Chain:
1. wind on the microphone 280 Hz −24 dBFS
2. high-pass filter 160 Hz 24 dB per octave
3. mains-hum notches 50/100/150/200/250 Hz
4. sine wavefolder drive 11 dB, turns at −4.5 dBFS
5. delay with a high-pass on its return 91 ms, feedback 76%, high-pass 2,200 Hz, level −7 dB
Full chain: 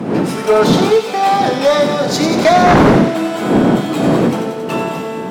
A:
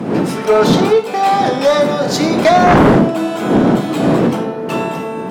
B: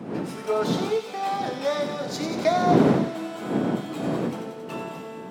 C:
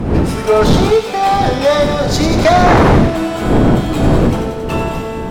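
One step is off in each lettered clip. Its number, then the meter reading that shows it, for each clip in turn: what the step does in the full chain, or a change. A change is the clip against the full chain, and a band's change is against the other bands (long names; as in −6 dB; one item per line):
5, echo-to-direct ratio −9.0 dB to none audible
4, distortion level −6 dB
2, 125 Hz band +5.0 dB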